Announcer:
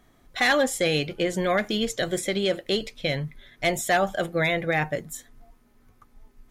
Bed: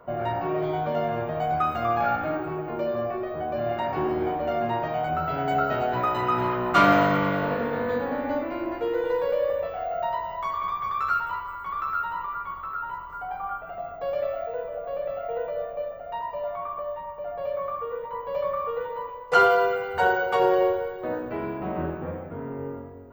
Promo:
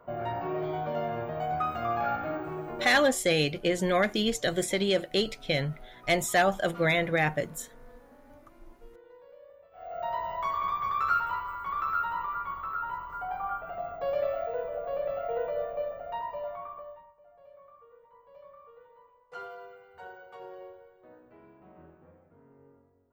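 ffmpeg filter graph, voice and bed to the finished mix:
ffmpeg -i stem1.wav -i stem2.wav -filter_complex "[0:a]adelay=2450,volume=-1.5dB[link_01];[1:a]volume=21dB,afade=type=out:start_time=2.69:duration=0.55:silence=0.0749894,afade=type=in:start_time=9.71:duration=0.58:silence=0.0473151,afade=type=out:start_time=15.98:duration=1.16:silence=0.0707946[link_02];[link_01][link_02]amix=inputs=2:normalize=0" out.wav

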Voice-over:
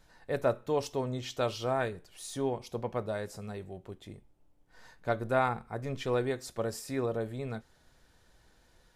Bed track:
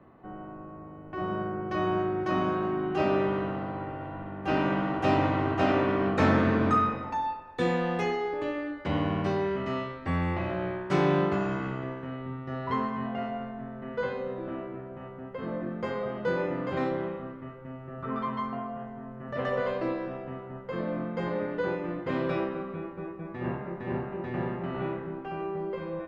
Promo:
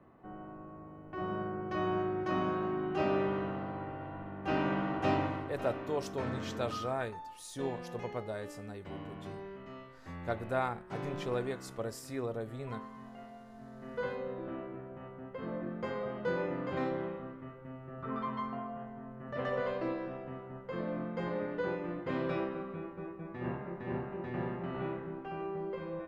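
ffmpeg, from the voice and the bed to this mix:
ffmpeg -i stem1.wav -i stem2.wav -filter_complex "[0:a]adelay=5200,volume=-5dB[link_01];[1:a]volume=6.5dB,afade=type=out:start_time=5.08:duration=0.44:silence=0.266073,afade=type=in:start_time=13.44:duration=0.62:silence=0.266073[link_02];[link_01][link_02]amix=inputs=2:normalize=0" out.wav

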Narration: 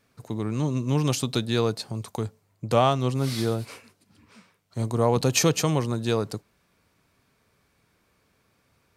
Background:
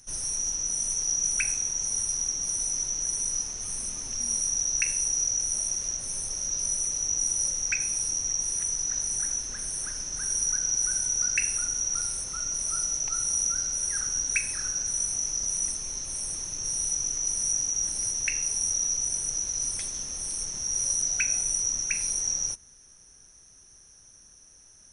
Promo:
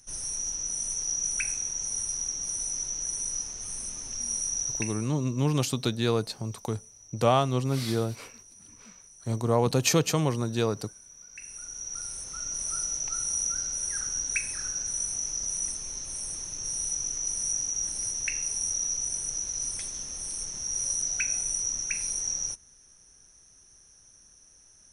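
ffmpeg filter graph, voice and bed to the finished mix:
ffmpeg -i stem1.wav -i stem2.wav -filter_complex "[0:a]adelay=4500,volume=-2dB[link_01];[1:a]volume=18dB,afade=type=out:start_time=4.64:duration=0.44:silence=0.0944061,afade=type=in:start_time=11.29:duration=1.33:silence=0.0891251[link_02];[link_01][link_02]amix=inputs=2:normalize=0" out.wav

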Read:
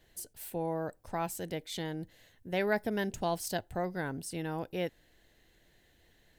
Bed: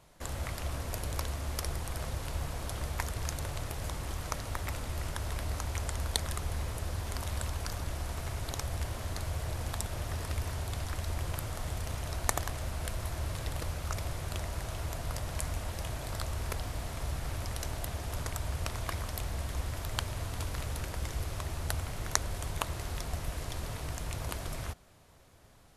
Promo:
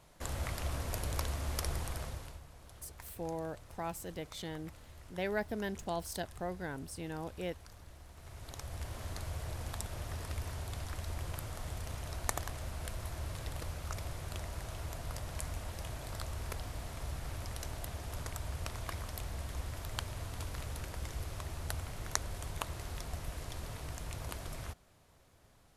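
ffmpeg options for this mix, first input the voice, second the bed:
ffmpeg -i stem1.wav -i stem2.wav -filter_complex "[0:a]adelay=2650,volume=-5dB[link_01];[1:a]volume=11.5dB,afade=type=out:start_time=1.81:duration=0.6:silence=0.149624,afade=type=in:start_time=8.14:duration=0.9:silence=0.237137[link_02];[link_01][link_02]amix=inputs=2:normalize=0" out.wav

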